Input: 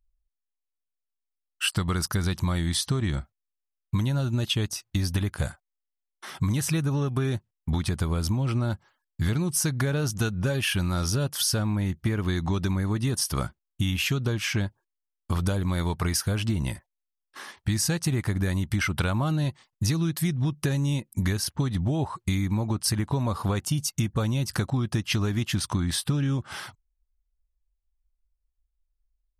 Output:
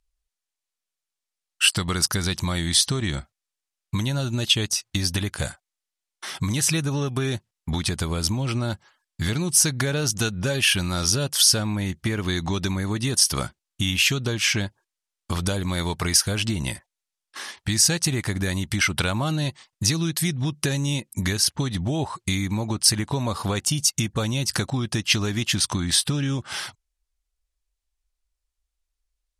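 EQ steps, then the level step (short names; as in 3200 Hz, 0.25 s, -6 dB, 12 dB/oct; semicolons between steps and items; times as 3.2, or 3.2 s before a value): LPF 9100 Hz 12 dB/oct; tilt +2 dB/oct; dynamic EQ 1200 Hz, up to -4 dB, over -47 dBFS, Q 1.3; +5.5 dB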